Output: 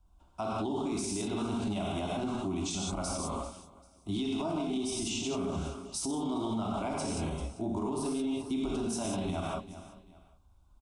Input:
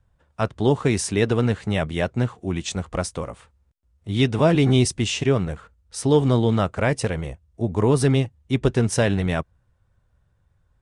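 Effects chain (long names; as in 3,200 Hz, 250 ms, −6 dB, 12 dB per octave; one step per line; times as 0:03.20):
phaser with its sweep stopped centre 480 Hz, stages 6
repeating echo 392 ms, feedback 29%, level −23 dB
reverb whose tail is shaped and stops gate 210 ms flat, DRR −2.5 dB
downward compressor, threshold −24 dBFS, peak gain reduction 13 dB
brickwall limiter −25.5 dBFS, peak gain reduction 10.5 dB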